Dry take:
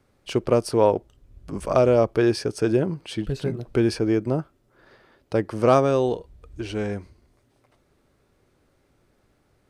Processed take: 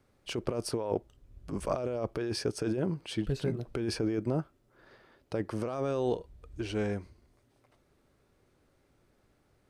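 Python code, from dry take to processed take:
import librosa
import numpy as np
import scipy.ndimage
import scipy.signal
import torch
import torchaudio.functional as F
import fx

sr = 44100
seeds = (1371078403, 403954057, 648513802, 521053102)

y = fx.over_compress(x, sr, threshold_db=-23.0, ratio=-1.0)
y = y * librosa.db_to_amplitude(-7.5)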